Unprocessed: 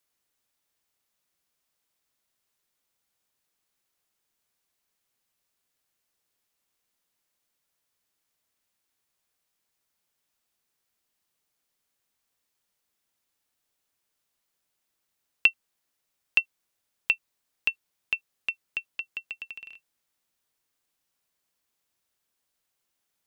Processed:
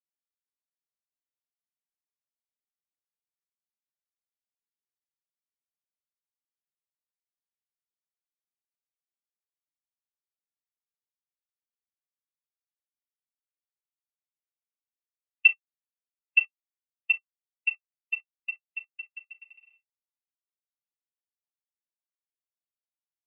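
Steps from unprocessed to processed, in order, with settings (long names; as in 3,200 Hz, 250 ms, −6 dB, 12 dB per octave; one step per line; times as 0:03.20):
high-pass filter 270 Hz 24 dB per octave
hollow resonant body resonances 570/850/1,200/2,000 Hz, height 16 dB, ringing for 45 ms
dynamic equaliser 4,300 Hz, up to +5 dB, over −38 dBFS, Q 0.76
convolution reverb, pre-delay 3 ms, DRR −2 dB
every bin expanded away from the loudest bin 1.5 to 1
level −5.5 dB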